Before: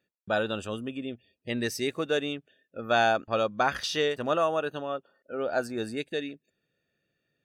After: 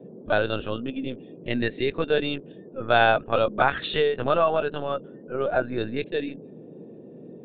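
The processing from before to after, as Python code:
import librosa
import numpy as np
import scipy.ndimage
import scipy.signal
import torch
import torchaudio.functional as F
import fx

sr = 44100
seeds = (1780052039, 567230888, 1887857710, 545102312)

y = fx.lpc_vocoder(x, sr, seeds[0], excitation='pitch_kept', order=16)
y = fx.dmg_noise_band(y, sr, seeds[1], low_hz=140.0, high_hz=480.0, level_db=-48.0)
y = F.gain(torch.from_numpy(y), 4.5).numpy()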